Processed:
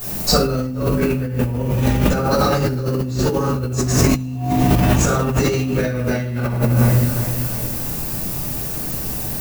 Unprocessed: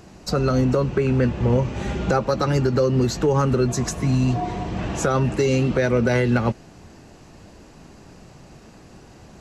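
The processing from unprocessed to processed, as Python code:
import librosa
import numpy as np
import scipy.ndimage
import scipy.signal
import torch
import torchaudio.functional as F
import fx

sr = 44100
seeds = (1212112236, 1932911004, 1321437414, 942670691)

p1 = fx.dmg_noise_colour(x, sr, seeds[0], colour='violet', level_db=-44.0)
p2 = fx.high_shelf(p1, sr, hz=3800.0, db=7.0)
p3 = p2 + fx.echo_feedback(p2, sr, ms=351, feedback_pct=47, wet_db=-16, dry=0)
p4 = fx.room_shoebox(p3, sr, seeds[1], volume_m3=380.0, walls='mixed', distance_m=5.9)
p5 = fx.over_compress(p4, sr, threshold_db=-11.0, ratio=-1.0)
y = p5 * 10.0 ** (-7.5 / 20.0)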